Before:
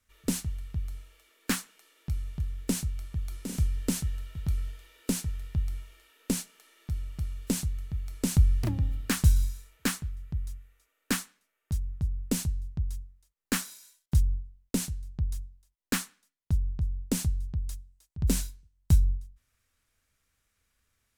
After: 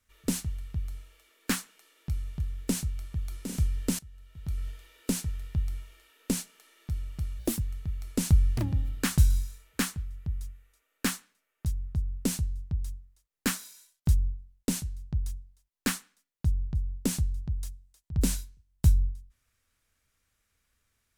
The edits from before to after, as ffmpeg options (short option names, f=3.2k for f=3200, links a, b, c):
-filter_complex "[0:a]asplit=4[a][b][c][d];[a]atrim=end=3.99,asetpts=PTS-STARTPTS,afade=t=out:st=3.986:d=0.004:c=hsin:silence=0.112202[e];[b]atrim=start=3.99:end=7.394,asetpts=PTS-STARTPTS,afade=t=in:d=0.69:c=qua:silence=0.112202[f];[c]atrim=start=7.39:end=7.67,asetpts=PTS-STARTPTS,asetrate=56448,aresample=44100[g];[d]atrim=start=7.666[h];[e][f]concat=n=2:v=0:a=1[i];[i][g]acrossfade=d=0.004:c1=hsin:c2=hsin[j];[j][h]acrossfade=d=0.004:c1=hsin:c2=hsin"